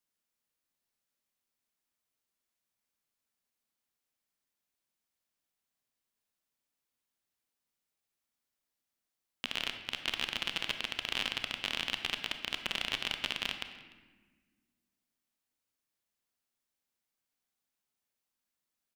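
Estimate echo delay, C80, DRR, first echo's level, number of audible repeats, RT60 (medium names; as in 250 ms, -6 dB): 296 ms, 10.0 dB, 7.0 dB, -23.5 dB, 1, 1.4 s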